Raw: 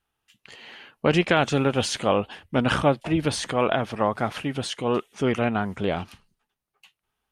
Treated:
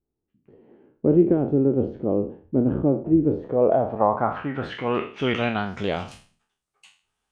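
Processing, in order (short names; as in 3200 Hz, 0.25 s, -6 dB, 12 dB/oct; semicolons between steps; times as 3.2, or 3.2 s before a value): spectral trails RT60 0.41 s; low-pass sweep 360 Hz -> 8200 Hz, 3.27–6.18; gain -1.5 dB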